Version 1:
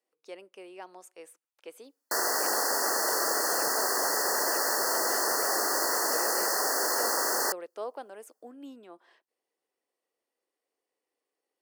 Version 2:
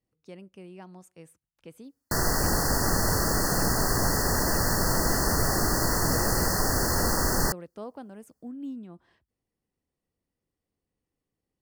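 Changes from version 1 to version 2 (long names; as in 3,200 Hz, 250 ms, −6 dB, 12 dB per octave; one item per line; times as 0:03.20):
speech −4.5 dB
master: remove high-pass filter 400 Hz 24 dB per octave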